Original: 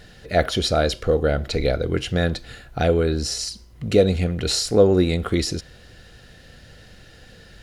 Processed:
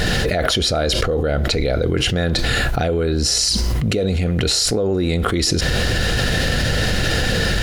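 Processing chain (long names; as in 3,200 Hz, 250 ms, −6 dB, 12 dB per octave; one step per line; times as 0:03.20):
envelope flattener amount 100%
level −8 dB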